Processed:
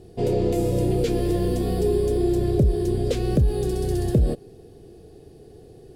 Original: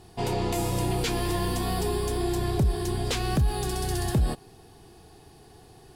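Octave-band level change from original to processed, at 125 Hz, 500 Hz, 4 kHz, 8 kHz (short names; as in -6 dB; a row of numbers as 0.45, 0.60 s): +4.5, +8.0, -6.0, -5.5 dB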